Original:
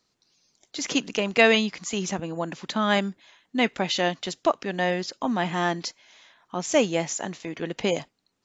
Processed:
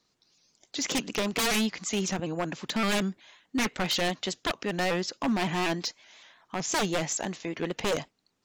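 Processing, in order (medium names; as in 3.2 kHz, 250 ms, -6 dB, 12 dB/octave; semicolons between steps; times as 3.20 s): wavefolder -21 dBFS; vibrato with a chosen wave saw up 5.3 Hz, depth 100 cents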